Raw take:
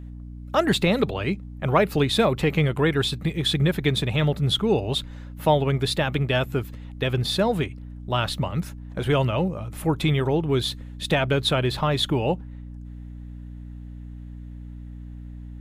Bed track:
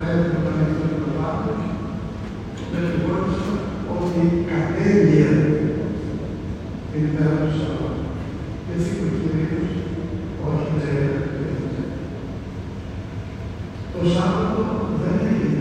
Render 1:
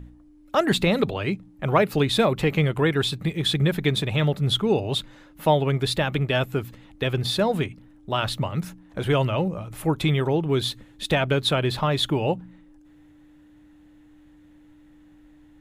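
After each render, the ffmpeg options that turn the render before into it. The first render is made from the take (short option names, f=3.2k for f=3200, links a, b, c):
-af "bandreject=f=60:t=h:w=4,bandreject=f=120:t=h:w=4,bandreject=f=180:t=h:w=4,bandreject=f=240:t=h:w=4"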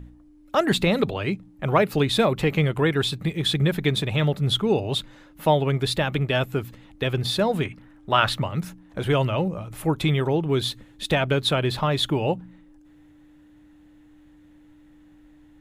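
-filter_complex "[0:a]asettb=1/sr,asplit=3[a][b][c];[a]atrim=end=7.654[d];[b]atrim=start=7.65:end=8.42,asetpts=PTS-STARTPTS,afade=t=in:d=0.004:c=qsin,afade=t=out:st=0.766:d=0.004:c=qsin,equalizer=f=1.5k:t=o:w=2:g=9[e];[c]atrim=start=8.416[f];[d][e]acrossfade=d=0.004:c1=hsin:c2=qsin[g];[g][f]acrossfade=d=0.004:c1=qsin:c2=hsin"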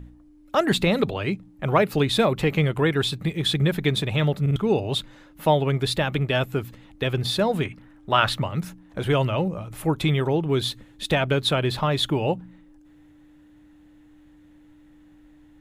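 -filter_complex "[0:a]asplit=4[a][b][c][d];[a]atrim=end=4.462[e];[b]atrim=start=4.408:end=4.462[f];[c]atrim=start=4.408:end=4.462[g];[d]atrim=start=4.558[h];[e][f]acrossfade=d=0.004:c1=hsin:c2=hsin[i];[i][g]acrossfade=d=0.004:c1=hsin:c2=hsin[j];[j][h]acrossfade=d=0.004:c1=hsin:c2=hsin"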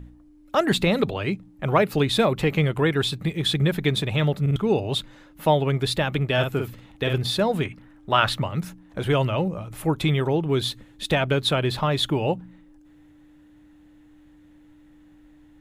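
-filter_complex "[0:a]asettb=1/sr,asplit=3[a][b][c];[a]atrim=end=6.334[d];[b]atrim=start=6.33:end=7.18,asetpts=PTS-STARTPTS,afade=t=in:d=0.004:c=qsin,afade=t=out:st=0.846:d=0.004:c=qsin,asplit=2[e][f];[f]adelay=49,volume=-5dB[g];[e][g]amix=inputs=2:normalize=0,atrim=end_sample=37485[h];[c]atrim=start=7.176[i];[d][h]acrossfade=d=0.004:c1=hsin:c2=qsin[j];[j][i]acrossfade=d=0.004:c1=qsin:c2=hsin"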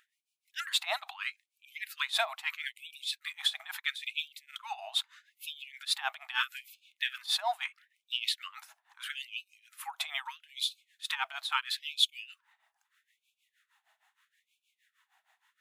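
-af "tremolo=f=6.4:d=0.87,afftfilt=real='re*gte(b*sr/1024,620*pow(2300/620,0.5+0.5*sin(2*PI*0.77*pts/sr)))':imag='im*gte(b*sr/1024,620*pow(2300/620,0.5+0.5*sin(2*PI*0.77*pts/sr)))':win_size=1024:overlap=0.75"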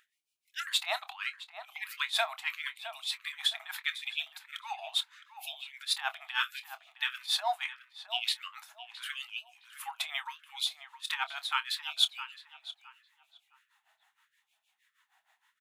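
-filter_complex "[0:a]asplit=2[a][b];[b]adelay=26,volume=-13.5dB[c];[a][c]amix=inputs=2:normalize=0,asplit=2[d][e];[e]adelay=664,lowpass=f=1.7k:p=1,volume=-10dB,asplit=2[f][g];[g]adelay=664,lowpass=f=1.7k:p=1,volume=0.32,asplit=2[h][i];[i]adelay=664,lowpass=f=1.7k:p=1,volume=0.32,asplit=2[j][k];[k]adelay=664,lowpass=f=1.7k:p=1,volume=0.32[l];[d][f][h][j][l]amix=inputs=5:normalize=0"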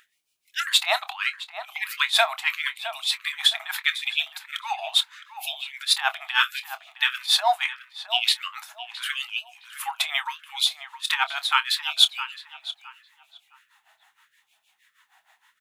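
-af "volume=10dB,alimiter=limit=-3dB:level=0:latency=1"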